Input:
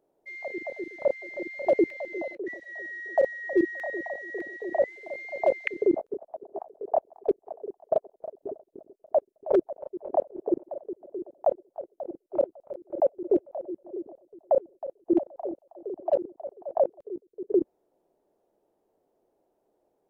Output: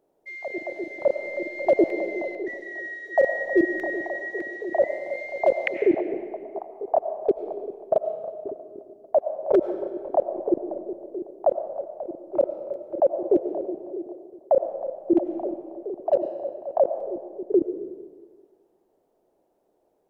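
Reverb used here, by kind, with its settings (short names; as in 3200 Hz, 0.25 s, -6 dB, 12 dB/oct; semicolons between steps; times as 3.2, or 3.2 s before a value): digital reverb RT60 1.6 s, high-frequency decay 0.85×, pre-delay 60 ms, DRR 8.5 dB; gain +3 dB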